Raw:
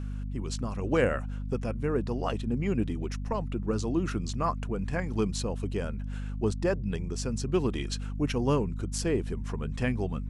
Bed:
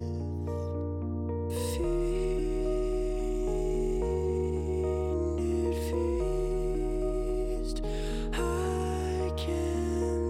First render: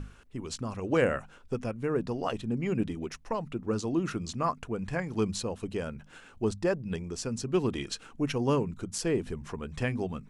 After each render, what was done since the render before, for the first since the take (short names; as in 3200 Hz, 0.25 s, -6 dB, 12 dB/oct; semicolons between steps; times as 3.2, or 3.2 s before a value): notches 50/100/150/200/250 Hz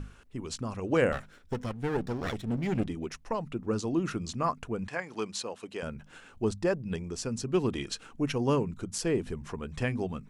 1.12–2.87 minimum comb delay 0.54 ms; 4.88–5.83 weighting filter A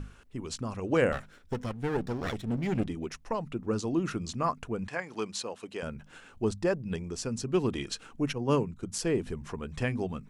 8.33–8.83 three-band expander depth 100%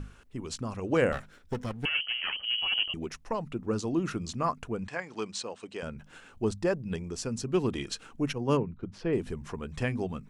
1.85–2.94 inverted band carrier 3100 Hz; 4.78–5.97 elliptic low-pass 8900 Hz; 8.57–9.13 air absorption 320 m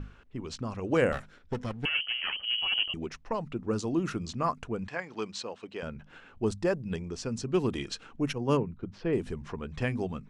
low-pass opened by the level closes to 3000 Hz, open at -24.5 dBFS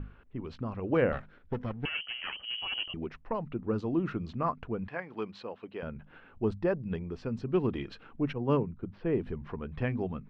air absorption 380 m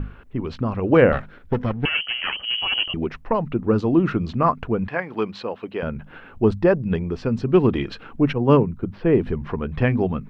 gain +12 dB